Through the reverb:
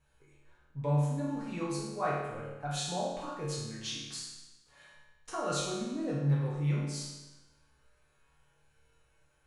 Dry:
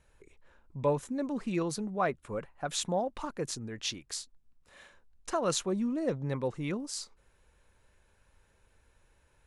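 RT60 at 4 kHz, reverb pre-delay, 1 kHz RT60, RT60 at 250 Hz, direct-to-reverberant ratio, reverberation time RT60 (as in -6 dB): 1.0 s, 6 ms, 1.1 s, 1.1 s, -8.0 dB, 1.1 s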